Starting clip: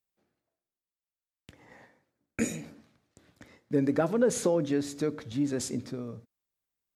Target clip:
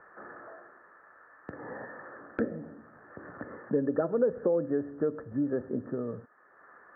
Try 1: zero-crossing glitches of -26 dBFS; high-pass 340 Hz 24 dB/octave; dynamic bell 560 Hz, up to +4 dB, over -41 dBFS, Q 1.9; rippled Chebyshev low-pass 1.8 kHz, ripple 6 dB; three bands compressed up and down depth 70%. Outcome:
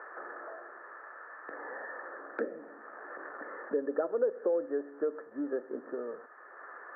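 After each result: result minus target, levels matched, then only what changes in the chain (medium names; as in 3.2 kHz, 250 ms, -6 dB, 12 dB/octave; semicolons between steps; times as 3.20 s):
zero-crossing glitches: distortion +10 dB; 250 Hz band -3.0 dB
change: zero-crossing glitches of -36 dBFS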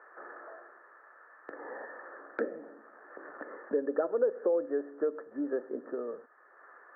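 250 Hz band -4.0 dB
remove: high-pass 340 Hz 24 dB/octave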